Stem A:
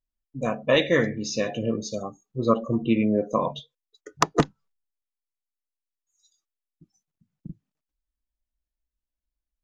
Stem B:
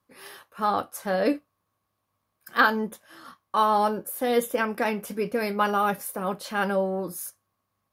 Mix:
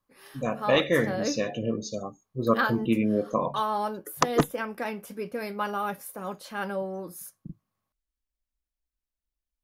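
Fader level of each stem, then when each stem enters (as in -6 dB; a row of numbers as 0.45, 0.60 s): -2.5, -6.5 dB; 0.00, 0.00 s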